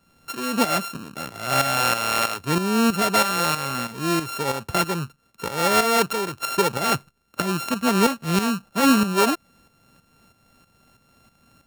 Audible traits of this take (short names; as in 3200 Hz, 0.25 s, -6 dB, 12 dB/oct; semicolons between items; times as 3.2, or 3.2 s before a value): a buzz of ramps at a fixed pitch in blocks of 32 samples; tremolo saw up 3.1 Hz, depth 65%